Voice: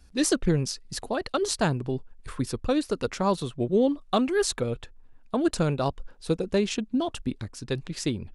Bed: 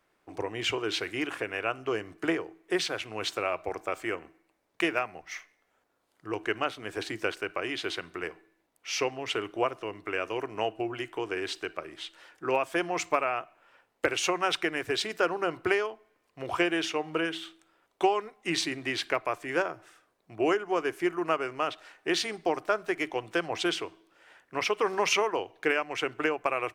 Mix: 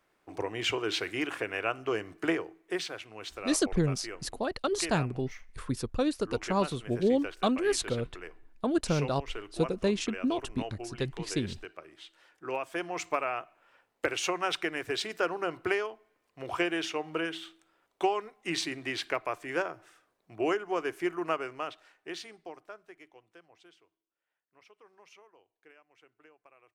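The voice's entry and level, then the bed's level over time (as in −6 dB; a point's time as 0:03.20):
3.30 s, −3.5 dB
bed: 0:02.39 −0.5 dB
0:03.14 −9.5 dB
0:12.06 −9.5 dB
0:13.30 −3 dB
0:21.33 −3 dB
0:23.76 −31.5 dB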